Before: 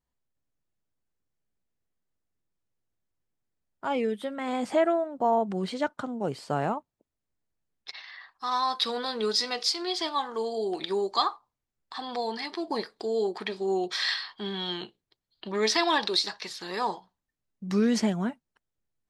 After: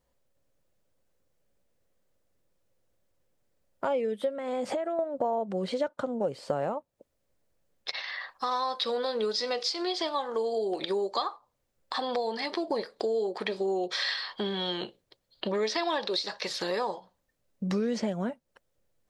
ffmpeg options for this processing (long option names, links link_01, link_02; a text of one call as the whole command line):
ffmpeg -i in.wav -filter_complex "[0:a]asettb=1/sr,asplit=3[link_01][link_02][link_03];[link_01]atrim=end=4.294[link_04];[link_02]atrim=start=4.29:end=4.99,asetpts=PTS-STARTPTS,afade=type=in:duration=0.004:curve=qsin,afade=type=out:start_time=0.696:duration=0.004:curve=qsin,acompressor=threshold=-34dB:ratio=5:attack=3.2:release=140:knee=1:detection=peak[link_05];[link_03]atrim=start=4.986[link_06];[link_04][link_05]acrossfade=duration=0.004:curve1=hsin:curve2=qsin[link_07];[link_07][link_06]acrossfade=duration=0.004:curve1=qsin:curve2=hsin,acrossover=split=6800[link_08][link_09];[link_09]acompressor=threshold=-54dB:ratio=4:attack=1:release=60[link_10];[link_08][link_10]amix=inputs=2:normalize=0,equalizer=frequency=540:width=3.5:gain=13,acompressor=threshold=-38dB:ratio=4,volume=8.5dB" out.wav